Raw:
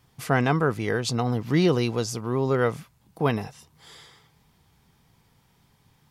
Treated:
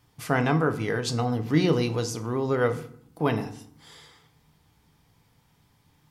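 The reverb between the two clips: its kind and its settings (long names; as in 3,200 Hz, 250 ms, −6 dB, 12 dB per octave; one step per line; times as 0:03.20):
feedback delay network reverb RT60 0.6 s, low-frequency decay 1.45×, high-frequency decay 0.65×, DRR 7.5 dB
level −2 dB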